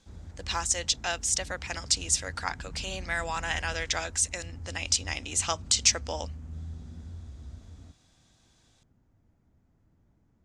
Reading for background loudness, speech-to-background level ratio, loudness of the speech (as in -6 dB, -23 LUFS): -43.5 LUFS, 15.0 dB, -28.5 LUFS